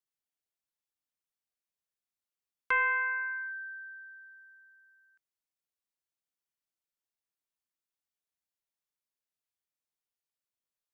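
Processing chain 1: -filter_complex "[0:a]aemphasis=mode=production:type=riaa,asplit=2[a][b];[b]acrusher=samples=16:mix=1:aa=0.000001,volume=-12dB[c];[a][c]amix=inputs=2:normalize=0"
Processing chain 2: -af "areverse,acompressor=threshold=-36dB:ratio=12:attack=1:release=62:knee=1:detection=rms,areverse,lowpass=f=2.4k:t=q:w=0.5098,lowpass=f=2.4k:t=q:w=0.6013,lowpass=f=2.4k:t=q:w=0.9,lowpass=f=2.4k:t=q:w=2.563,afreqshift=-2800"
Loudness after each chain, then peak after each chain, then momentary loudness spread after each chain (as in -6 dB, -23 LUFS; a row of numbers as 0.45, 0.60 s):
-30.0, -40.0 LUFS; -16.5, -32.5 dBFS; 21, 18 LU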